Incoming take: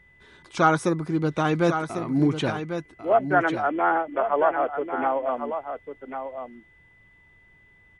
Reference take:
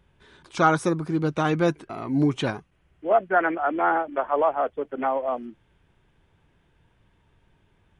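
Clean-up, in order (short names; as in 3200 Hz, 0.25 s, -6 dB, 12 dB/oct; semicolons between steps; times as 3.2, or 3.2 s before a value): notch 2000 Hz, Q 30; inverse comb 1.096 s -8.5 dB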